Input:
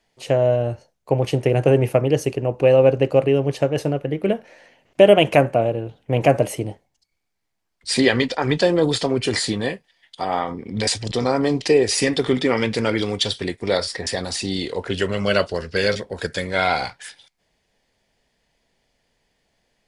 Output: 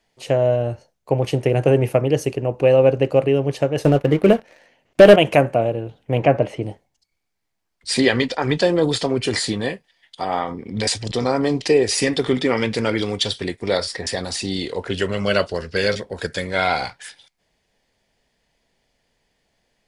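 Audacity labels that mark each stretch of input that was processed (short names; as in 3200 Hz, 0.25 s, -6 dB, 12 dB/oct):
3.840000	5.160000	sample leveller passes 2
6.200000	6.630000	LPF 3100 Hz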